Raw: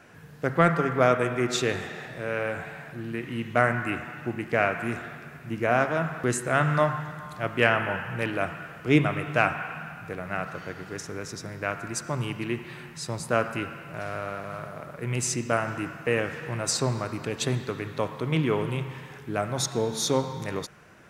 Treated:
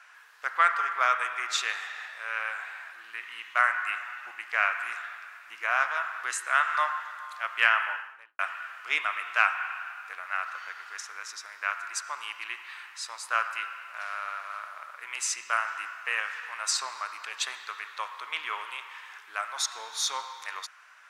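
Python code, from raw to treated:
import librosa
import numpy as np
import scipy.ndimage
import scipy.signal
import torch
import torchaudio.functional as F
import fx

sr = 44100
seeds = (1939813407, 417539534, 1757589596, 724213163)

y = fx.studio_fade_out(x, sr, start_s=7.8, length_s=0.59)
y = scipy.signal.sosfilt(scipy.signal.cheby1(3, 1.0, 1100.0, 'highpass', fs=sr, output='sos'), y)
y = fx.high_shelf(y, sr, hz=9000.0, db=-11.0)
y = y * librosa.db_to_amplitude(3.0)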